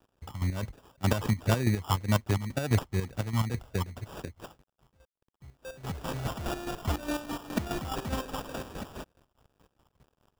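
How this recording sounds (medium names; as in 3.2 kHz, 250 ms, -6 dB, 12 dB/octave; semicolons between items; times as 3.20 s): a quantiser's noise floor 10-bit, dither none; phasing stages 12, 2 Hz, lowest notch 440–3300 Hz; aliases and images of a low sample rate 2.1 kHz, jitter 0%; chopped level 4.8 Hz, depth 65%, duty 40%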